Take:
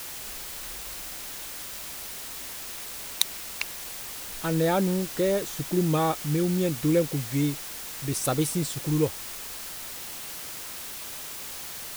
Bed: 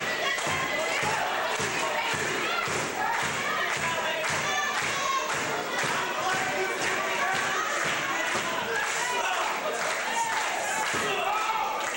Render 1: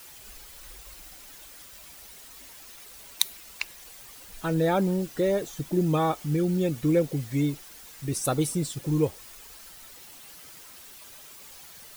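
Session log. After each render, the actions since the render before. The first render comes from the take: noise reduction 11 dB, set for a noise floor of -38 dBFS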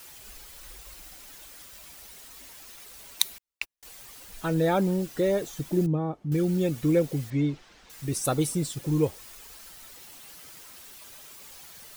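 3.38–3.83 s: gate -36 dBFS, range -46 dB; 5.86–6.32 s: band-pass filter 180 Hz, Q 0.71; 7.30–7.90 s: distance through air 150 m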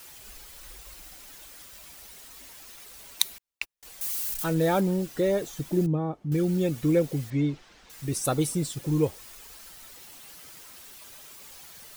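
4.01–4.81 s: zero-crossing glitches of -28.5 dBFS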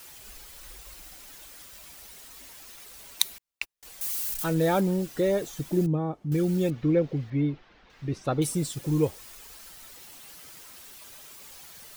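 6.70–8.42 s: distance through air 240 m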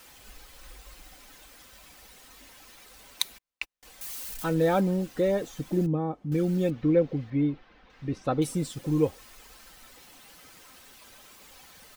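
treble shelf 4.9 kHz -8.5 dB; comb 3.9 ms, depth 30%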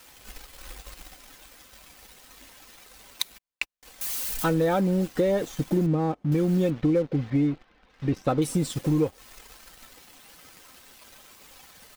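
compression 6:1, threshold -27 dBFS, peak gain reduction 10 dB; waveshaping leveller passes 2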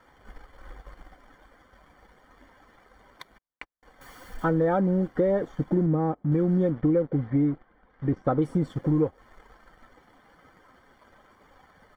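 Savitzky-Golay filter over 41 samples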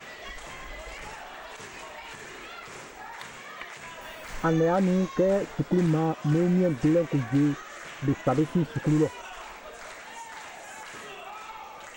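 add bed -14 dB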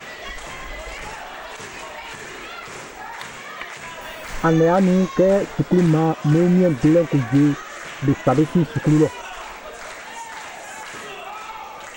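trim +7.5 dB

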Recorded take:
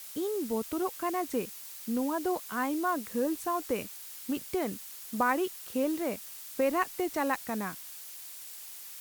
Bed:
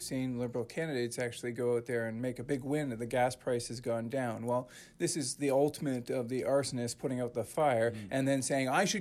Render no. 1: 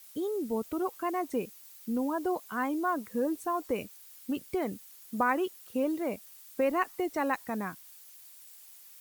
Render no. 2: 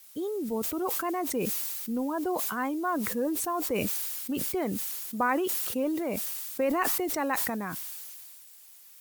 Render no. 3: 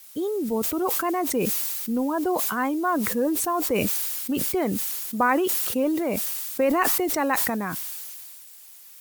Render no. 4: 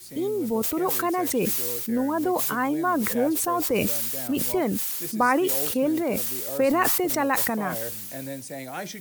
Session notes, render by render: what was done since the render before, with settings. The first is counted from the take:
noise reduction 10 dB, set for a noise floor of -45 dBFS
decay stretcher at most 22 dB/s
trim +5.5 dB
add bed -5 dB

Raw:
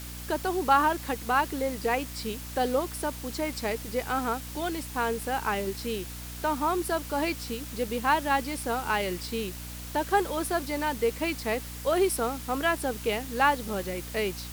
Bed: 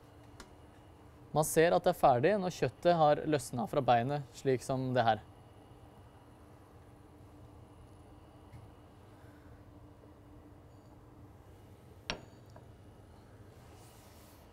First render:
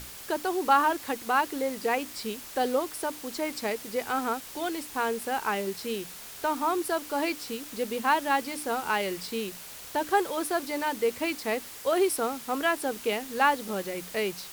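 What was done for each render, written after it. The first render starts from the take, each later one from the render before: hum notches 60/120/180/240/300 Hz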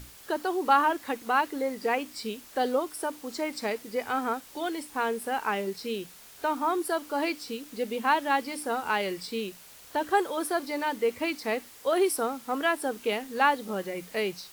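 noise print and reduce 7 dB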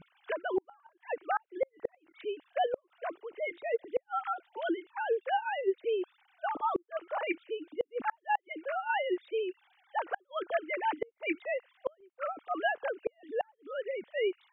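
formants replaced by sine waves; inverted gate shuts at -19 dBFS, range -40 dB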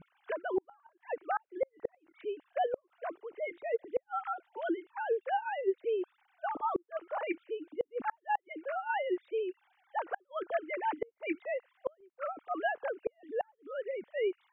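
distance through air 410 m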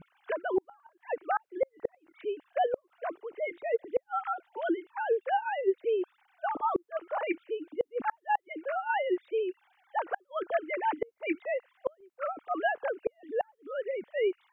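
trim +3.5 dB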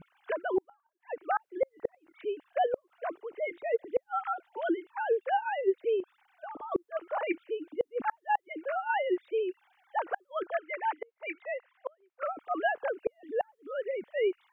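0.55–1.27 s: dip -20 dB, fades 0.31 s; 6.00–6.72 s: compression, threshold -39 dBFS; 10.47–12.23 s: band-pass 690–2900 Hz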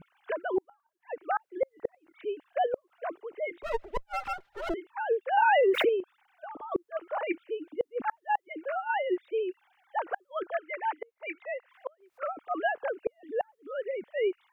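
3.63–4.74 s: comb filter that takes the minimum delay 5 ms; 5.37–5.89 s: level flattener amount 100%; 11.42–12.33 s: upward compressor, threshold -49 dBFS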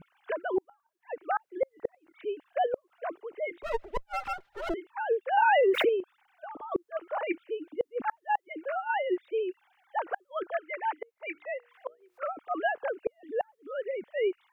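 11.33–12.26 s: hum notches 60/120/180/240/300/360/420/480 Hz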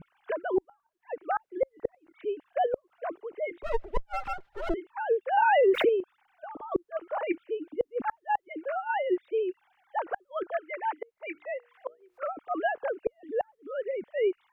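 tilt EQ -1.5 dB/octave

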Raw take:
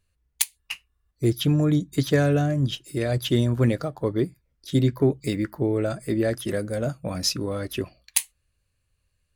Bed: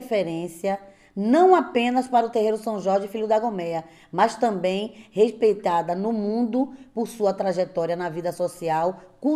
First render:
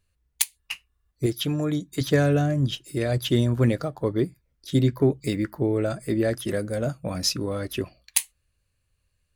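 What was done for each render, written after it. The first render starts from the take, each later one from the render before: 1.26–2.01 s: bass shelf 250 Hz -9.5 dB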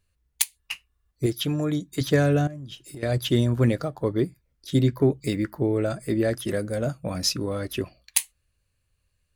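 2.47–3.03 s: compression 10:1, threshold -35 dBFS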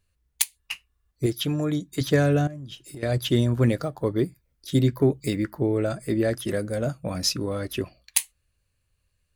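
3.69–5.30 s: treble shelf 9.5 kHz +5.5 dB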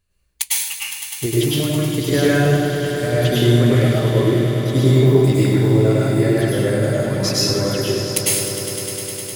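echo with a slow build-up 102 ms, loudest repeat 5, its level -13 dB; plate-style reverb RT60 0.88 s, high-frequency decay 1×, pre-delay 90 ms, DRR -6.5 dB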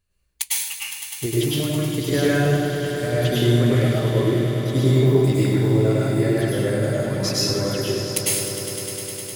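trim -3.5 dB

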